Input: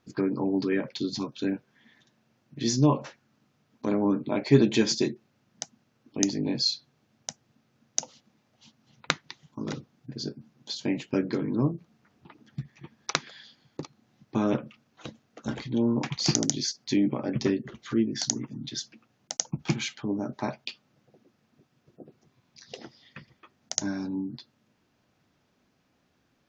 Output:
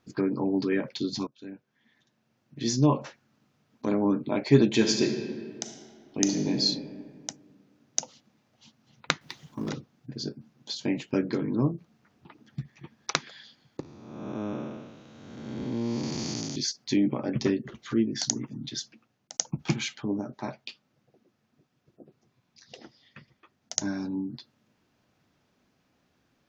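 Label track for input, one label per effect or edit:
1.270000	2.960000	fade in, from -20 dB
4.740000	6.600000	reverb throw, RT60 2 s, DRR 4 dB
9.210000	9.690000	companding laws mixed up coded by mu
13.800000	16.560000	spectral blur width 476 ms
18.750000	19.340000	fade out, to -10 dB
20.210000	23.760000	flange 1.2 Hz, delay 0.4 ms, depth 9.5 ms, regen -56%

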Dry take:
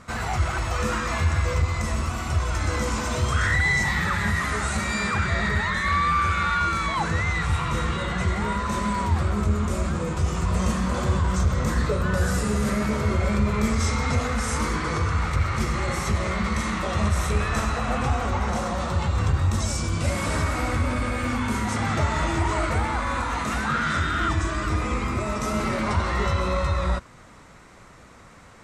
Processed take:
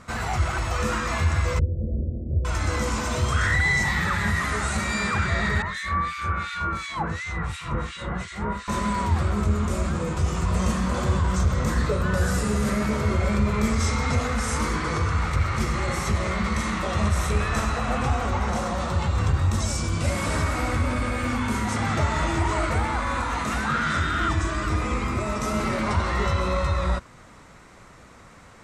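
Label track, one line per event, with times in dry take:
1.590000	2.450000	steep low-pass 570 Hz 72 dB/octave
5.620000	8.680000	harmonic tremolo 2.8 Hz, depth 100%, crossover 1.8 kHz

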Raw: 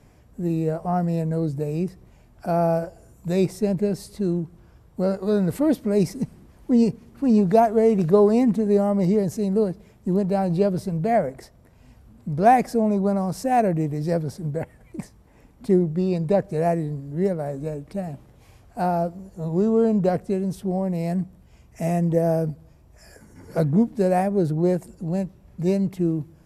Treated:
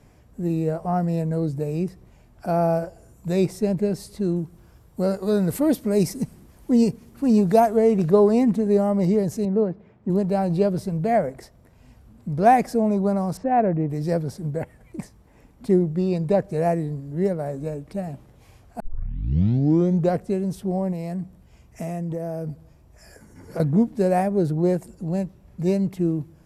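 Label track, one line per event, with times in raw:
4.360000	7.770000	treble shelf 6.3 kHz +9.5 dB
9.450000	10.100000	band-pass 100–2100 Hz
13.370000	13.900000	low-pass 1.8 kHz
18.800000	18.800000	tape start 1.32 s
20.920000	23.600000	compression, threshold -25 dBFS

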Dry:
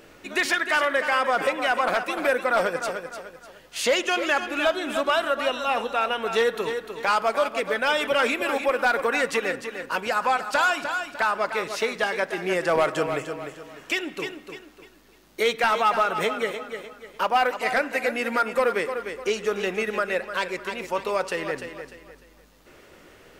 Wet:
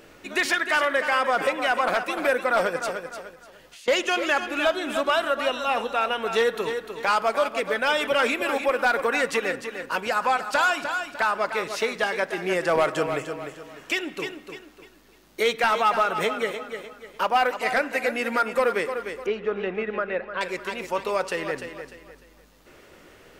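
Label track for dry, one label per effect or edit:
3.330000	3.880000	compression 16:1, threshold -43 dBFS
19.260000	20.410000	distance through air 410 m

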